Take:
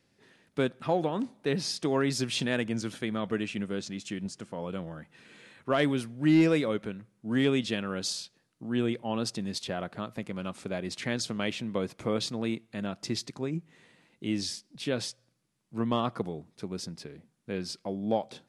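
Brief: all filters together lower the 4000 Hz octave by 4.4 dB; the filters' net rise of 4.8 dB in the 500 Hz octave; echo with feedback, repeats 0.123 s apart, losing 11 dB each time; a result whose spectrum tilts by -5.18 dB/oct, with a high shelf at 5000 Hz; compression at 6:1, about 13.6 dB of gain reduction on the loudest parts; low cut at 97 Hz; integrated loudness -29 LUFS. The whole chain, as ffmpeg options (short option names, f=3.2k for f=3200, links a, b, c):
-af "highpass=97,equalizer=f=500:t=o:g=6,equalizer=f=4k:t=o:g=-4,highshelf=f=5k:g=-3.5,acompressor=threshold=-32dB:ratio=6,aecho=1:1:123|246|369:0.282|0.0789|0.0221,volume=8.5dB"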